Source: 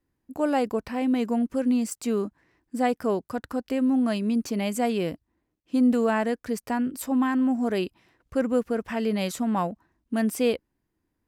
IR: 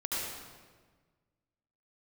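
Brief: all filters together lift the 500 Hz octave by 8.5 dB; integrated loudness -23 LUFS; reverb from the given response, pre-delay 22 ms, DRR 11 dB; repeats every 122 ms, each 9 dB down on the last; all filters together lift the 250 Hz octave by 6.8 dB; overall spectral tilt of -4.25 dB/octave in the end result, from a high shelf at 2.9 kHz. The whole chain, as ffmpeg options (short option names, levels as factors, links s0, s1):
-filter_complex "[0:a]equalizer=f=250:t=o:g=5.5,equalizer=f=500:t=o:g=8,highshelf=f=2900:g=8.5,aecho=1:1:122|244|366|488:0.355|0.124|0.0435|0.0152,asplit=2[s0][s1];[1:a]atrim=start_sample=2205,adelay=22[s2];[s1][s2]afir=irnorm=-1:irlink=0,volume=0.15[s3];[s0][s3]amix=inputs=2:normalize=0,volume=0.596"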